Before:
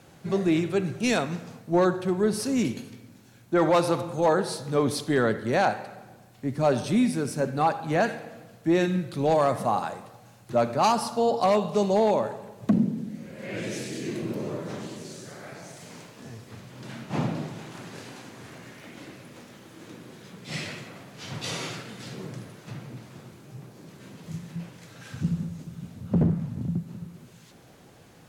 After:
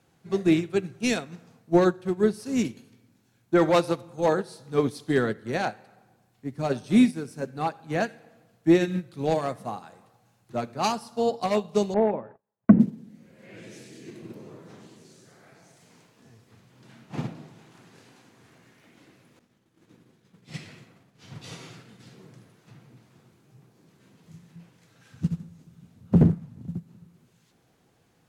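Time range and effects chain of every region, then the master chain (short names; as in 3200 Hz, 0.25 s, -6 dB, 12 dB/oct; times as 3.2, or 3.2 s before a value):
11.94–12.8 gate -36 dBFS, range -32 dB + LPF 2000 Hz 24 dB/oct + mismatched tape noise reduction encoder only
19.39–22.1 expander -41 dBFS + low shelf 250 Hz +6.5 dB
whole clip: notch 580 Hz, Q 12; dynamic EQ 950 Hz, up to -5 dB, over -36 dBFS, Q 1.3; upward expander 2.5:1, over -31 dBFS; gain +9 dB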